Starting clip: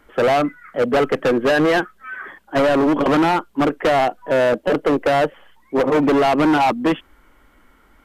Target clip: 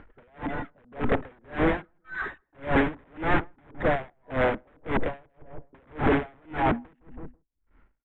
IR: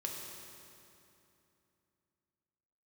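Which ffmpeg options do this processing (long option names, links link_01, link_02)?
-filter_complex "[0:a]aeval=exprs='val(0)+0.5*0.0237*sgn(val(0))':channel_layout=same,agate=range=-32dB:threshold=-34dB:ratio=16:detection=peak,aeval=exprs='(mod(5.96*val(0)+1,2)-1)/5.96':channel_layout=same,lowpass=frequency=2200:width=0.5412,lowpass=frequency=2200:width=1.3066,lowshelf=frequency=130:gain=11.5,afwtdn=0.02,equalizer=frequency=1200:width_type=o:width=0.22:gain=-3,asplit=2[link_01][link_02];[link_02]adelay=163,lowpass=frequency=1000:poles=1,volume=-10dB,asplit=2[link_03][link_04];[link_04]adelay=163,lowpass=frequency=1000:poles=1,volume=0.3,asplit=2[link_05][link_06];[link_06]adelay=163,lowpass=frequency=1000:poles=1,volume=0.3[link_07];[link_01][link_03][link_05][link_07]amix=inputs=4:normalize=0,acompressor=mode=upward:threshold=-27dB:ratio=2.5,aeval=exprs='val(0)*pow(10,-39*(0.5-0.5*cos(2*PI*1.8*n/s))/20)':channel_layout=same"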